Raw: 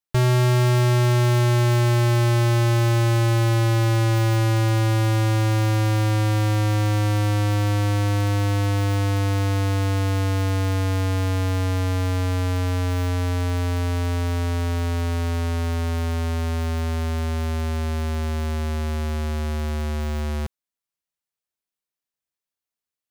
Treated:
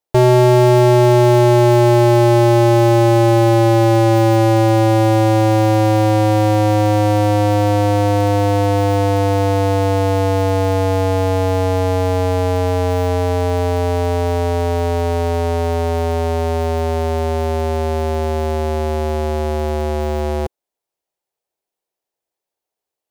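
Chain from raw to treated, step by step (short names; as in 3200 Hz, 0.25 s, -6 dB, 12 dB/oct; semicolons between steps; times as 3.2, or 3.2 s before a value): band shelf 550 Hz +11.5 dB; gain +3 dB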